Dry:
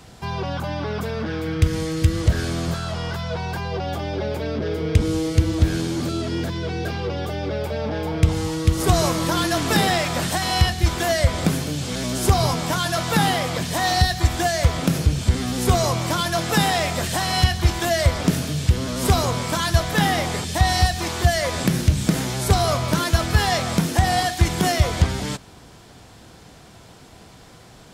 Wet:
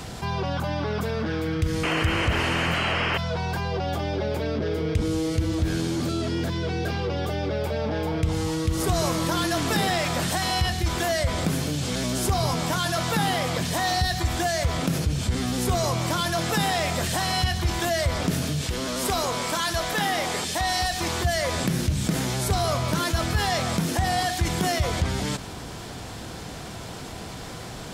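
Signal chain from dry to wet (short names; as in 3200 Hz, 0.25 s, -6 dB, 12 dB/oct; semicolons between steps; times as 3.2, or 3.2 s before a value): 1.83–3.18 painted sound noise 200–3200 Hz -23 dBFS; 18.61–21.01 bell 99 Hz -13.5 dB 1.9 oct; fast leveller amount 50%; gain -8.5 dB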